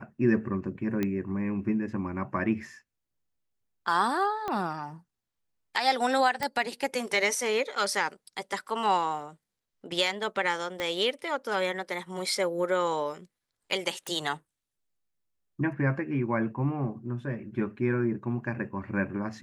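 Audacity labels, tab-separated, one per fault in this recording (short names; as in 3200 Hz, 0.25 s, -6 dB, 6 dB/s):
1.030000	1.030000	pop -16 dBFS
4.480000	4.480000	pop -19 dBFS
6.430000	6.430000	pop -14 dBFS
10.800000	10.800000	pop -18 dBFS
14.070000	14.070000	pop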